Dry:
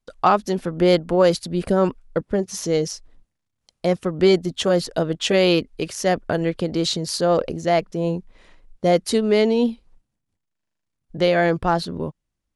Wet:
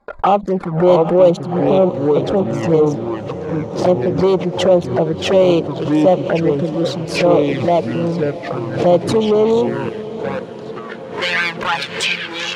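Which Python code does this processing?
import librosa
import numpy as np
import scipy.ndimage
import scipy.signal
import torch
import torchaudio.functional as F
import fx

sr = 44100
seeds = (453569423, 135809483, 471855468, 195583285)

y = fx.wiener(x, sr, points=15)
y = fx.high_shelf(y, sr, hz=5800.0, db=11.5)
y = y + 0.42 * np.pad(y, (int(5.0 * sr / 1000.0), 0))[:len(y)]
y = fx.echo_pitch(y, sr, ms=572, semitones=-4, count=3, db_per_echo=-6.0)
y = fx.leveller(y, sr, passes=3)
y = fx.level_steps(y, sr, step_db=13, at=(9.69, 11.18))
y = fx.filter_sweep_bandpass(y, sr, from_hz=560.0, to_hz=2500.0, start_s=10.17, end_s=11.43, q=1.3)
y = fx.env_flanger(y, sr, rest_ms=3.6, full_db=-10.0)
y = fx.graphic_eq_31(y, sr, hz=(250, 400, 630), db=(-11, -9, -8))
y = fx.echo_diffused(y, sr, ms=732, feedback_pct=64, wet_db=-14.5)
y = fx.pre_swell(y, sr, db_per_s=94.0)
y = F.gain(torch.from_numpy(y), 6.0).numpy()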